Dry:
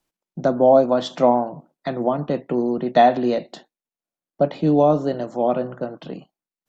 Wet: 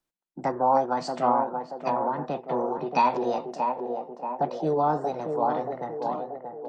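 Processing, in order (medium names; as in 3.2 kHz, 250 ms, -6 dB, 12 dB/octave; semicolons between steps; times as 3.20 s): band-passed feedback delay 631 ms, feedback 63%, band-pass 410 Hz, level -3.5 dB; formant shift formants +5 st; trim -8 dB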